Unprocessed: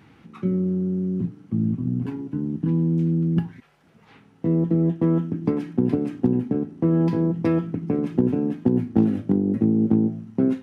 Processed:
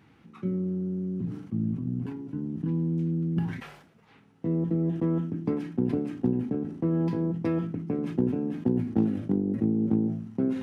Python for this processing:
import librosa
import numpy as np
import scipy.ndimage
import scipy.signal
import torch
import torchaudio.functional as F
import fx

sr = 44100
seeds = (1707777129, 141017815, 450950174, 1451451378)

y = fx.sustainer(x, sr, db_per_s=72.0)
y = F.gain(torch.from_numpy(y), -6.5).numpy()